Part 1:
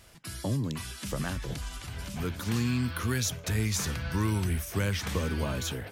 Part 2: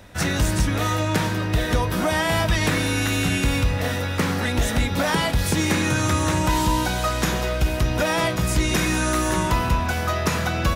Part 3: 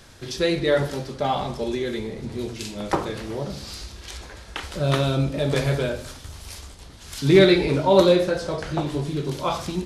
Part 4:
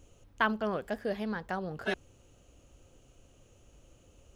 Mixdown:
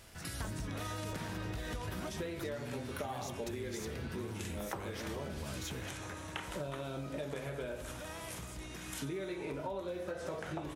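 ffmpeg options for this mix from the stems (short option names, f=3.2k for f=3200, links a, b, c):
-filter_complex "[0:a]acompressor=threshold=-35dB:ratio=6,volume=-1dB[a];[1:a]alimiter=limit=-19dB:level=0:latency=1:release=148,volume=-6dB[b];[2:a]acompressor=threshold=-23dB:ratio=6,highpass=f=260:p=1,equalizer=f=4.6k:t=o:w=0.69:g=-12.5,adelay=1800,volume=-3.5dB[c];[3:a]volume=-12dB,asplit=2[d][e];[e]apad=whole_len=474223[f];[b][f]sidechaingate=range=-13dB:threshold=-60dB:ratio=16:detection=peak[g];[a][g][c][d]amix=inputs=4:normalize=0,acompressor=threshold=-37dB:ratio=6"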